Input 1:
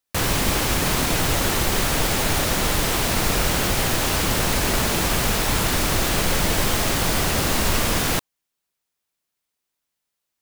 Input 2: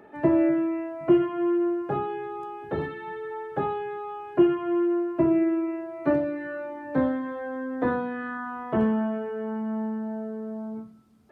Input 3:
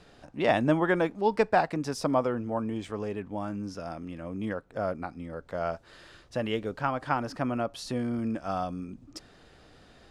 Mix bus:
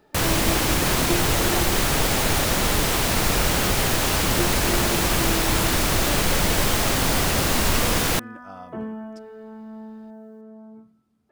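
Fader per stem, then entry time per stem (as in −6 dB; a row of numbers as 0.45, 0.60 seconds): 0.0, −9.0, −10.5 decibels; 0.00, 0.00, 0.00 seconds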